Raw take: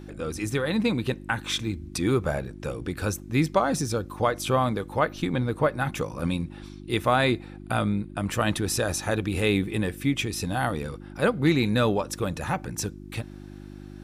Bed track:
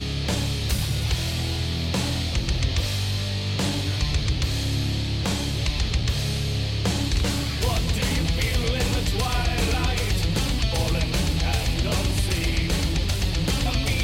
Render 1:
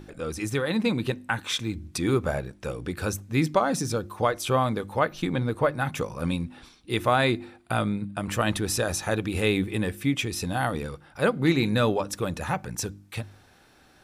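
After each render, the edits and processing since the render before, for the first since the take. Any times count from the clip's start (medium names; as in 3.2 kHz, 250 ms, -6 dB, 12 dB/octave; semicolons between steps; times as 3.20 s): de-hum 50 Hz, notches 7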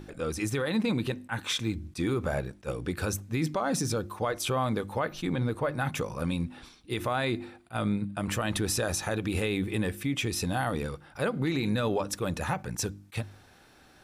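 peak limiter -19.5 dBFS, peak gain reduction 10 dB; attacks held to a fixed rise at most 440 dB/s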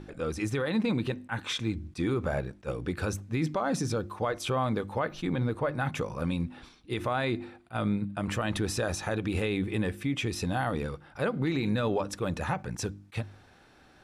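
Bessel low-pass 11 kHz, order 2; treble shelf 5 kHz -7 dB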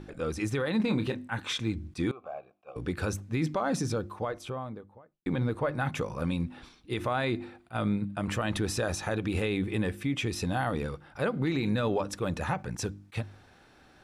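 0.77–1.30 s: doubling 28 ms -8 dB; 2.11–2.76 s: vowel filter a; 3.74–5.26 s: studio fade out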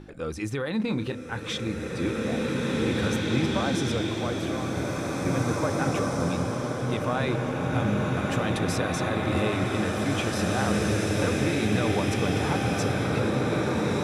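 swelling reverb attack 2390 ms, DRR -4.5 dB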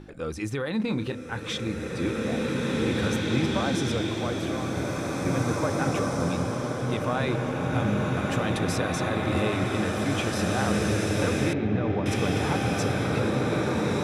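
11.53–12.06 s: tape spacing loss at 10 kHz 40 dB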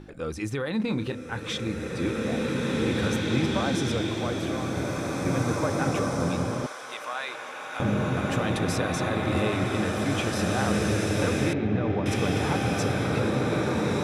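6.66–7.80 s: high-pass 1 kHz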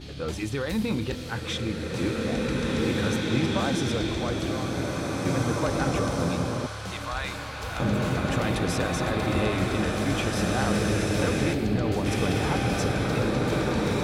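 add bed track -13.5 dB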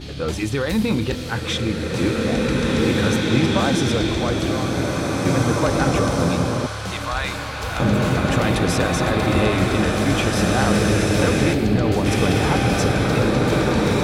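trim +7 dB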